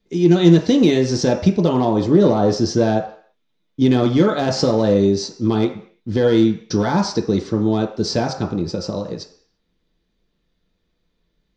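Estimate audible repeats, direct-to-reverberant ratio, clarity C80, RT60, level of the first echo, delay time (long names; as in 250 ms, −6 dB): no echo audible, 1.0 dB, 12.5 dB, 0.55 s, no echo audible, no echo audible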